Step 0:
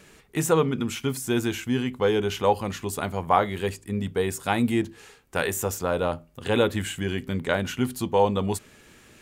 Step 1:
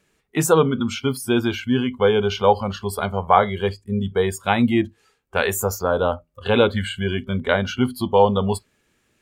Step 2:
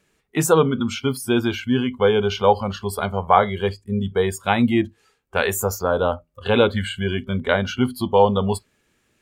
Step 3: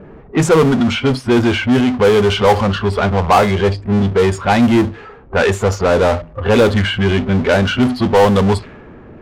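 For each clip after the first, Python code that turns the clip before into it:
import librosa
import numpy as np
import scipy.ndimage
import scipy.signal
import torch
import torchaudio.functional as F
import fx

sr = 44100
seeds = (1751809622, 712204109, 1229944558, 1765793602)

y1 = fx.noise_reduce_blind(x, sr, reduce_db=19)
y1 = F.gain(torch.from_numpy(y1), 5.5).numpy()
y2 = y1
y3 = fx.high_shelf(y2, sr, hz=4200.0, db=-11.5)
y3 = fx.power_curve(y3, sr, exponent=0.5)
y3 = fx.env_lowpass(y3, sr, base_hz=740.0, full_db=-7.5)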